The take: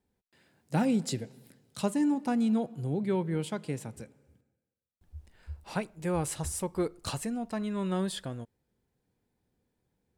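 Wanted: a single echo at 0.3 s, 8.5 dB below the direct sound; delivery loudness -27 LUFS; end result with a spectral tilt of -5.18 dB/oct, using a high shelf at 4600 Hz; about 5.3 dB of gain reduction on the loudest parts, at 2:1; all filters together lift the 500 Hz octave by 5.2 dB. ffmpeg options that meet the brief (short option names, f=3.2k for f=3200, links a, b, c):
-af "equalizer=f=500:t=o:g=6.5,highshelf=f=4.6k:g=4,acompressor=threshold=-31dB:ratio=2,aecho=1:1:300:0.376,volume=6.5dB"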